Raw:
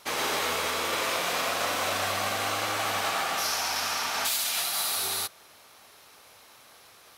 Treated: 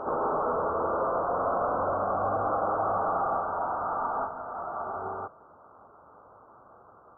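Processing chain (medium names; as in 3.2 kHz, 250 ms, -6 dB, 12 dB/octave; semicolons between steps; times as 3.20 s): dynamic bell 590 Hz, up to +5 dB, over -44 dBFS, Q 0.93; saturation -26.5 dBFS, distortion -12 dB; steep low-pass 1.4 kHz 96 dB/octave; reverse echo 178 ms -7 dB; trim +4 dB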